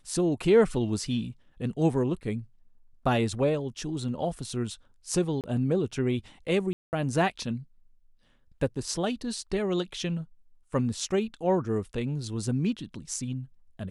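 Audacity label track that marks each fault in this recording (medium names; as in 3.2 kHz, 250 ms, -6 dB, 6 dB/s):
5.410000	5.440000	dropout 28 ms
6.730000	6.930000	dropout 199 ms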